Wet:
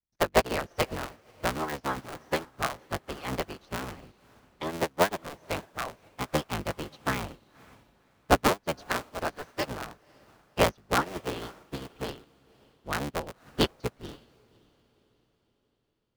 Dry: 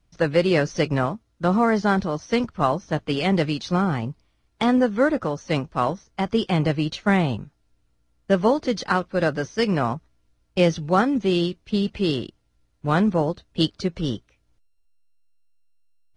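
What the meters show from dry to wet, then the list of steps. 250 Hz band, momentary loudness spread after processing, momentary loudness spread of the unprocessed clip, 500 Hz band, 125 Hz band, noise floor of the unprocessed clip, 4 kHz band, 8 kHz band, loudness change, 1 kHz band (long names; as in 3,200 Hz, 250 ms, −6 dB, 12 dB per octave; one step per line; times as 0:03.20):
−14.0 dB, 14 LU, 8 LU, −8.5 dB, −12.5 dB, −67 dBFS, −5.5 dB, +2.5 dB, −8.5 dB, −5.5 dB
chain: sub-harmonics by changed cycles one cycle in 3, inverted
harmonic and percussive parts rebalanced harmonic −9 dB
on a send: feedback delay with all-pass diffusion 538 ms, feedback 46%, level −8.5 dB
on the sum: expander for the loud parts 2.5 to 1, over −33 dBFS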